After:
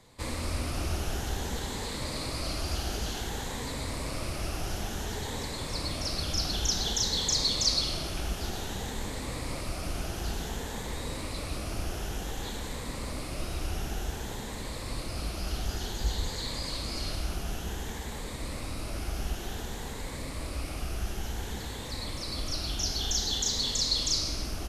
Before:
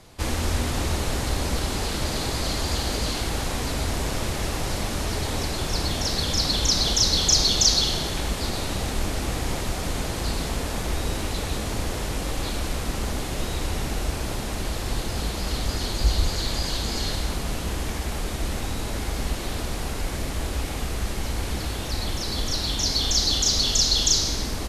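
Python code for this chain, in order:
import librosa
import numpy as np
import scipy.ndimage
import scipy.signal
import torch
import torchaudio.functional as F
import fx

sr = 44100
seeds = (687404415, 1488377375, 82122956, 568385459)

y = fx.spec_ripple(x, sr, per_octave=1.0, drift_hz=0.55, depth_db=6)
y = F.gain(torch.from_numpy(y), -8.0).numpy()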